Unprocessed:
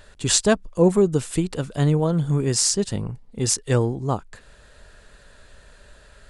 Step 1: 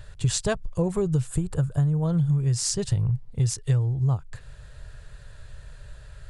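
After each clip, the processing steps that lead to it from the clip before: spectral gain 1.27–2.04, 1800–6600 Hz -9 dB; resonant low shelf 170 Hz +9.5 dB, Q 3; compressor 12:1, threshold -17 dBFS, peak gain reduction 15 dB; gain -2.5 dB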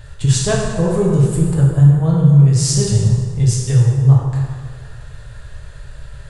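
plate-style reverb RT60 1.9 s, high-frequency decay 0.65×, DRR -3.5 dB; gain +4 dB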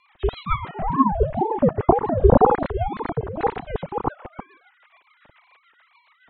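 sine-wave speech; rotary speaker horn 7 Hz; ring modulator with a swept carrier 450 Hz, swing 50%, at 2 Hz; gain -3.5 dB

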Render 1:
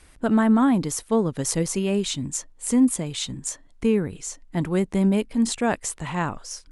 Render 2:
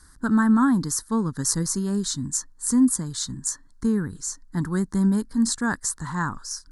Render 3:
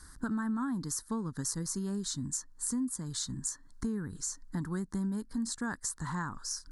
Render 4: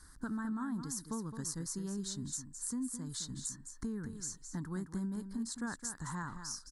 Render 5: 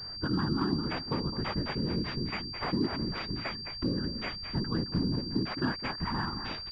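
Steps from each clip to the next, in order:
EQ curve 260 Hz 0 dB, 650 Hz -16 dB, 980 Hz +1 dB, 1700 Hz +4 dB, 2500 Hz -28 dB, 4300 Hz +3 dB
compressor 4:1, threshold -34 dBFS, peak gain reduction 16.5 dB
echo 0.214 s -9.5 dB; gain -5 dB
whisperiser; pulse-width modulation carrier 4700 Hz; gain +8 dB

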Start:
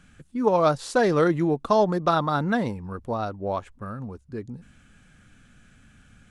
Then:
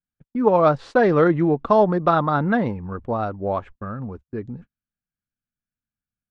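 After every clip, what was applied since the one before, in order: LPF 2400 Hz 12 dB/oct; gate -42 dBFS, range -44 dB; notch 960 Hz, Q 27; gain +4 dB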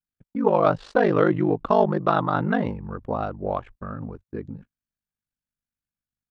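ring modulator 25 Hz; dynamic EQ 2900 Hz, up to +6 dB, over -51 dBFS, Q 4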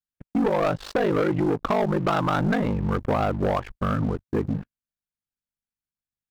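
compressor 8:1, threshold -26 dBFS, peak gain reduction 13 dB; sample leveller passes 3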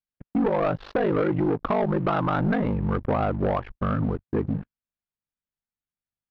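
air absorption 280 m

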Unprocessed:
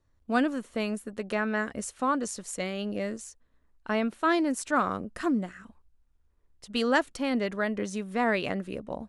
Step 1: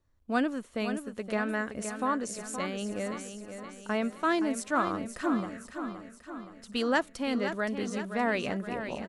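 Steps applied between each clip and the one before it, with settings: feedback echo 0.52 s, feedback 55%, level -9 dB; gain -2.5 dB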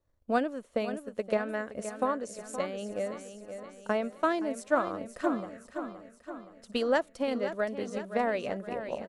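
transient shaper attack +7 dB, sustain -1 dB; bell 560 Hz +9.5 dB 0.86 oct; gain -6.5 dB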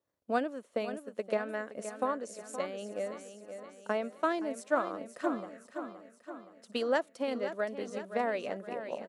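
HPF 210 Hz 12 dB/oct; gain -2.5 dB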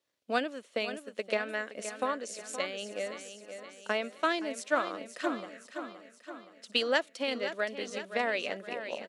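weighting filter D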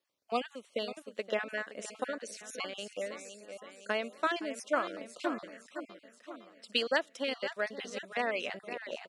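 random spectral dropouts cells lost 24%; gain -1.5 dB

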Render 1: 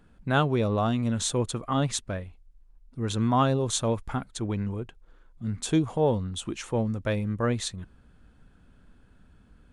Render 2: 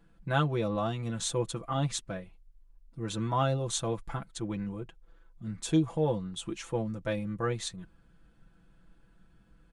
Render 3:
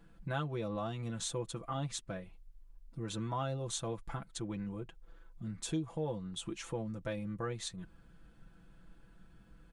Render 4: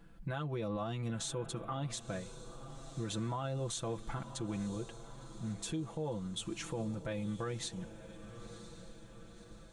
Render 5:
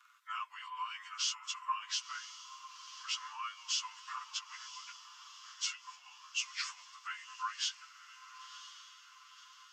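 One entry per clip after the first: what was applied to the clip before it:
comb 6 ms, depth 82%; gain -6.5 dB
compressor 2:1, threshold -44 dBFS, peak gain reduction 13 dB; gain +2 dB
diffused feedback echo 1.012 s, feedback 53%, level -15 dB; limiter -31.5 dBFS, peak gain reduction 7.5 dB; gain +2 dB
inharmonic rescaling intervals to 92%; rippled Chebyshev high-pass 1000 Hz, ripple 3 dB; gain +10 dB

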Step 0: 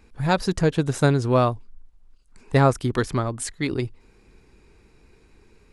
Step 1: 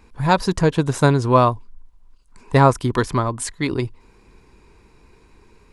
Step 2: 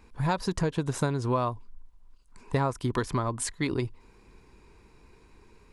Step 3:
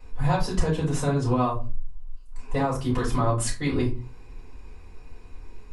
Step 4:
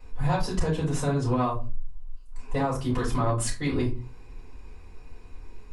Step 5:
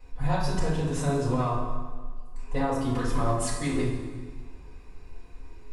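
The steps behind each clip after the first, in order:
bell 1000 Hz +10.5 dB 0.24 oct; gain +3 dB
compressor 6:1, threshold -19 dBFS, peak gain reduction 11 dB; gain -4.5 dB
limiter -20.5 dBFS, peak gain reduction 5.5 dB; shoebox room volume 130 m³, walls furnished, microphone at 5.1 m; gain -6 dB
soft clip -12.5 dBFS, distortion -22 dB; gain -1 dB
plate-style reverb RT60 1.6 s, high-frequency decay 0.8×, DRR 1.5 dB; gain -3 dB

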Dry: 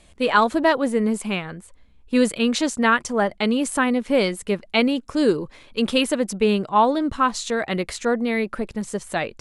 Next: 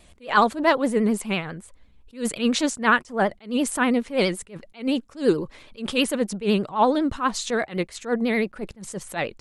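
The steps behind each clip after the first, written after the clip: vibrato 12 Hz 89 cents; attack slew limiter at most 210 dB/s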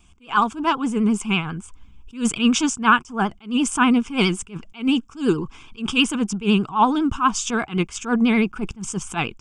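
AGC gain up to 11 dB; fixed phaser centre 2800 Hz, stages 8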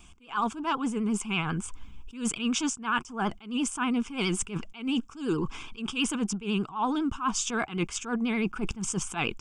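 bell 86 Hz -4 dB 2.7 oct; reverse; compressor 5:1, threshold -31 dBFS, peak gain reduction 19 dB; reverse; gain +4 dB

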